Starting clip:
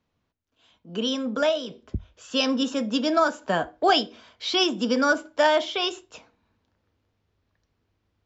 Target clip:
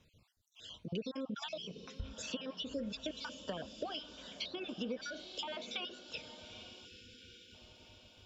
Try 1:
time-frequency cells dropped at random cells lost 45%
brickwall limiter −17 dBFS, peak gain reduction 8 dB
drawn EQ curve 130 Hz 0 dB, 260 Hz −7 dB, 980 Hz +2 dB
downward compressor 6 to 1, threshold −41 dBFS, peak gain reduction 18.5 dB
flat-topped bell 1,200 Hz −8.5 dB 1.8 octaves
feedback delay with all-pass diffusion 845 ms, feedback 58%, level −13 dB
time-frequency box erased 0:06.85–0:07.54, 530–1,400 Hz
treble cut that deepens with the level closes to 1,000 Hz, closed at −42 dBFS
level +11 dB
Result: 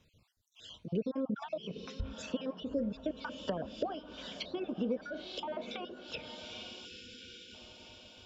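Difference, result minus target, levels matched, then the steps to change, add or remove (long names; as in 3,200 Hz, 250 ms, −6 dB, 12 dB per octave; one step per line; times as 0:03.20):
downward compressor: peak gain reduction −6 dB
change: downward compressor 6 to 1, threshold −48.5 dBFS, peak gain reduction 25 dB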